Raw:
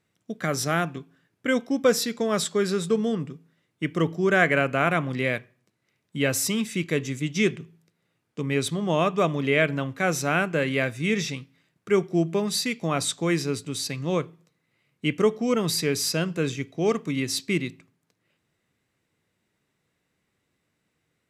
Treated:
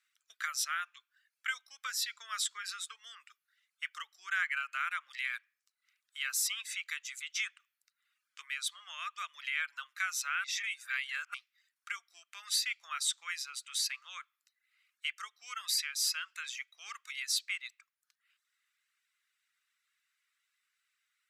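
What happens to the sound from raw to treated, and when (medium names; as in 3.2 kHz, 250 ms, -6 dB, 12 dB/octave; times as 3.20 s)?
10.44–11.34 s: reverse
whole clip: compression 3:1, threshold -27 dBFS; reverb removal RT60 0.58 s; Chebyshev high-pass 1.3 kHz, order 4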